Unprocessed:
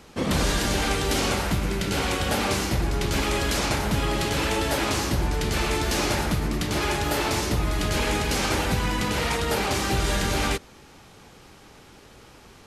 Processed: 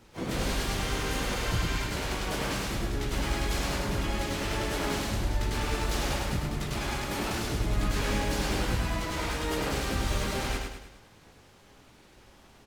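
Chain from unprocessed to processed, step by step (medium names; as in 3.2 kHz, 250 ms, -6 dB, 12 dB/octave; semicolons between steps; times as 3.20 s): spectral replace 0.87–1.82 s, 1.1–8.2 kHz before; chorus voices 2, 0.31 Hz, delay 17 ms, depth 2.6 ms; harmony voices -7 st -1 dB, +12 st -8 dB; on a send: feedback delay 103 ms, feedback 46%, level -4 dB; on the sum: trim -8 dB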